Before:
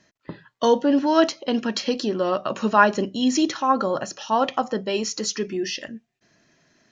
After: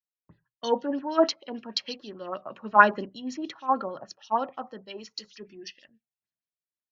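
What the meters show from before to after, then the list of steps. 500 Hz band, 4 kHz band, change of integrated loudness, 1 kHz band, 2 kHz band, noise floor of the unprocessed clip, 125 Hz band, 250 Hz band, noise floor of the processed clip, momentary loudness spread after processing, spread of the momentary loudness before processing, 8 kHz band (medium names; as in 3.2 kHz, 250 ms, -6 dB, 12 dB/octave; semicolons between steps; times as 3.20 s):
-7.0 dB, -7.0 dB, -4.5 dB, -3.0 dB, -1.0 dB, -72 dBFS, under -10 dB, -11.0 dB, under -85 dBFS, 22 LU, 10 LU, no reading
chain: LFO low-pass sine 6.4 Hz 810–5100 Hz; three bands expanded up and down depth 100%; trim -12.5 dB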